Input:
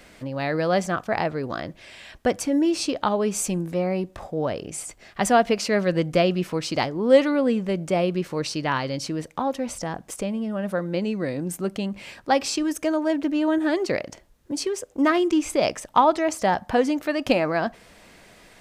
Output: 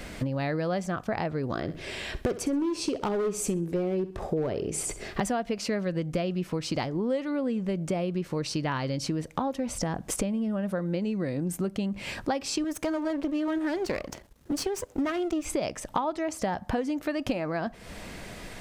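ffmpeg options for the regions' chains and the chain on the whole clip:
-filter_complex "[0:a]asettb=1/sr,asplit=3[s0][s1][s2];[s0]atrim=end=1.554[s3];[s1]atrim=start=1.55:end=5.2,asetpts=PTS-STARTPTS,afade=t=in:d=0.004:c=qsin,afade=t=out:st=3.646:d=0.004:c=qsin,equalizer=f=400:t=o:w=0.46:g=11,asoftclip=type=hard:threshold=0.158,aecho=1:1:64|128|192:0.178|0.0533|0.016,atrim=end_sample=160965[s4];[s2]atrim=start=5.196[s5];[s3][s4]acrossfade=d=0.004:c1=hsin:c2=qsin[s6];[s6][s5]acrossfade=d=0.004:c1=qsin:c2=hsin,asettb=1/sr,asplit=3[s7][s8][s9];[s7]atrim=end=12.644[s10];[s8]atrim=start=12.64:end=15.45,asetpts=PTS-STARTPTS,afade=t=in:d=0.004:c=qsin,afade=t=out:st=2.806:d=0.004:c=qsin,aeval=exprs='if(lt(val(0),0),0.251*val(0),val(0))':c=same,highpass=f=110:p=1[s11];[s9]atrim=start=15.446[s12];[s10][s11]acrossfade=d=0.004:c1=hsin:c2=qsin[s13];[s13][s12]acrossfade=d=0.004:c1=qsin:c2=hsin,lowshelf=f=240:g=8,acompressor=threshold=0.0224:ratio=8,volume=2.11"

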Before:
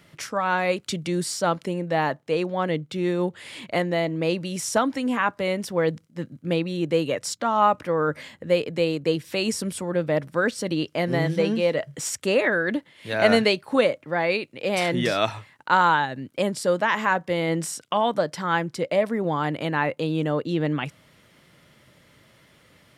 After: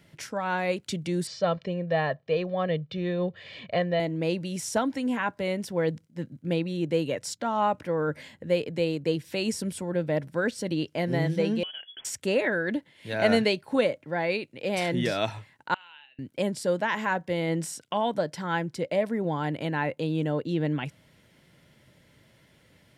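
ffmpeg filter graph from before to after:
-filter_complex "[0:a]asettb=1/sr,asplit=3[s0][s1][s2];[s0]atrim=end=1.274[s3];[s1]atrim=start=1.27:end=4,asetpts=PTS-STARTPTS,afade=t=in:d=0.004:c=qsin,afade=t=out:st=2.726:d=0.004:c=qsin,lowpass=f=4700:w=0.5412,lowpass=f=4700:w=1.3066,aecho=1:1:1.7:0.65,atrim=end_sample=120393[s4];[s2]atrim=start=3.996[s5];[s3][s4]acrossfade=d=0.004:c1=hsin:c2=qsin[s6];[s6][s5]acrossfade=d=0.004:c1=qsin:c2=hsin,asettb=1/sr,asplit=3[s7][s8][s9];[s7]atrim=end=11.634[s10];[s8]atrim=start=11.63:end=12.05,asetpts=PTS-STARTPTS,afade=t=in:d=0.004:c=qsin,afade=t=out:st=0.416:d=0.004:c=qsin,acompressor=threshold=0.0282:ratio=6:attack=3.2:release=140:knee=1:detection=peak,lowpass=f=3000:t=q:w=0.5098,lowpass=f=3000:t=q:w=0.6013,lowpass=f=3000:t=q:w=0.9,lowpass=f=3000:t=q:w=2.563,afreqshift=-3500[s11];[s9]atrim=start=12.046[s12];[s10][s11]acrossfade=d=0.004:c1=hsin:c2=qsin[s13];[s13][s12]acrossfade=d=0.004:c1=qsin:c2=hsin,asettb=1/sr,asplit=3[s14][s15][s16];[s14]atrim=end=15.744[s17];[s15]atrim=start=15.74:end=16.19,asetpts=PTS-STARTPTS,afade=t=in:d=0.004:c=qsin,afade=t=out:st=0.446:d=0.004:c=qsin,bandpass=f=2700:t=q:w=15,asplit=2[s18][s19];[s19]adelay=40,volume=0.224[s20];[s18][s20]amix=inputs=2:normalize=0,atrim=end_sample=19845[s21];[s16]atrim=start=16.186[s22];[s17][s21]acrossfade=d=0.004:c1=hsin:c2=qsin[s23];[s23][s22]acrossfade=d=0.004:c1=qsin:c2=hsin,lowshelf=f=270:g=4.5,bandreject=f=1200:w=5.7,volume=0.562"

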